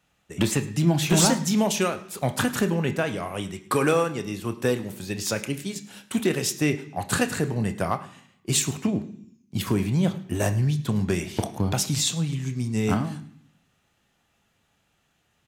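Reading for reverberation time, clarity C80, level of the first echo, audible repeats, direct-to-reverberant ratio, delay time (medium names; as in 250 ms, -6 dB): 0.65 s, 15.5 dB, -19.5 dB, 1, 8.0 dB, 107 ms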